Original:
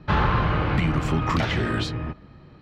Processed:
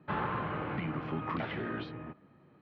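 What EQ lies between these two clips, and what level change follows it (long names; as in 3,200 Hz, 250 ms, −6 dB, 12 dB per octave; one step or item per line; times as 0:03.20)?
band-pass filter 180–3,900 Hz
high-frequency loss of the air 280 metres
−9.0 dB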